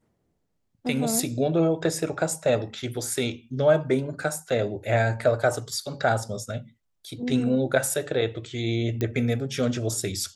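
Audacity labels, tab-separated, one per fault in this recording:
9.010000	9.010000	click −14 dBFS

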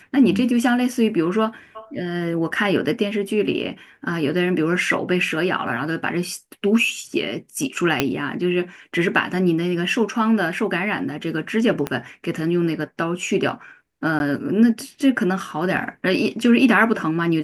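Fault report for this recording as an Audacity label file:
8.000000	8.000000	click −2 dBFS
11.870000	11.870000	click −10 dBFS
14.190000	14.200000	drop-out

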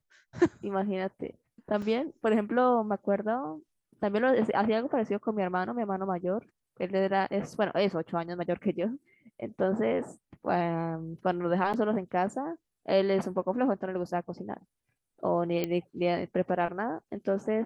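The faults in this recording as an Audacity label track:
1.820000	1.820000	drop-out 3.5 ms
11.730000	11.740000	drop-out 7.2 ms
15.640000	15.640000	click −16 dBFS

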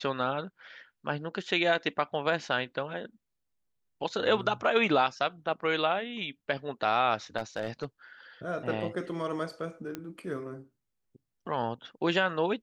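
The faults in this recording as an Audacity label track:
7.370000	7.850000	clipping −25.5 dBFS
9.950000	9.950000	click −21 dBFS

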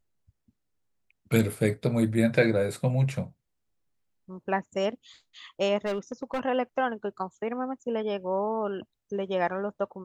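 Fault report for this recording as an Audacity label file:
5.850000	6.400000	clipping −25.5 dBFS

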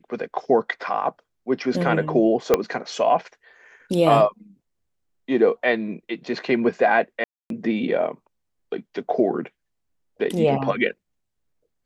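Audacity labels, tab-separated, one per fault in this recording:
2.540000	2.540000	click −3 dBFS
7.240000	7.500000	drop-out 262 ms

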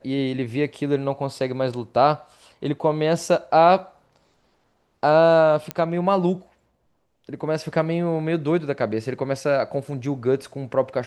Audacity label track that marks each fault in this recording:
5.710000	5.710000	click −10 dBFS

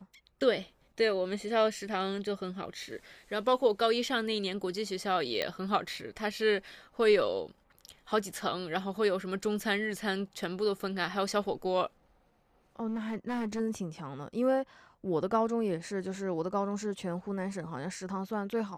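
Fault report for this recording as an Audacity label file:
5.420000	5.420000	click −17 dBFS
12.870000	13.610000	clipping −30 dBFS

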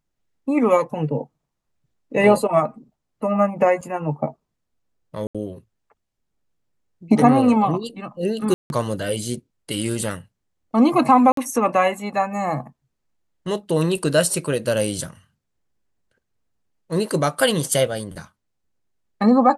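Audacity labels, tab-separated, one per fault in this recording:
3.810000	3.810000	drop-out 4.5 ms
5.270000	5.350000	drop-out 76 ms
8.540000	8.700000	drop-out 161 ms
11.320000	11.370000	drop-out 53 ms

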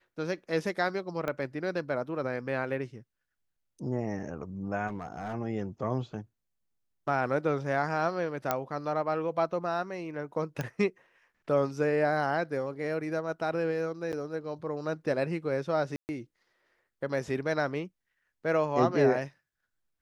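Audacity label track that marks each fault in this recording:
1.280000	1.280000	click −19 dBFS
4.870000	5.350000	clipping −31 dBFS
8.510000	8.510000	click −12 dBFS
10.610000	10.610000	click −18 dBFS
14.120000	14.130000	drop-out 8.6 ms
15.960000	16.090000	drop-out 129 ms

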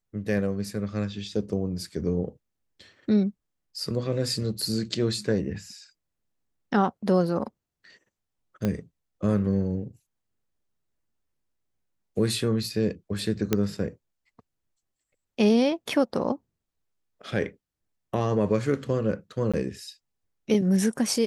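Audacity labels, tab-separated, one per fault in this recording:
8.650000	8.650000	click −14 dBFS
13.530000	13.530000	click −8 dBFS
19.520000	19.540000	drop-out 16 ms

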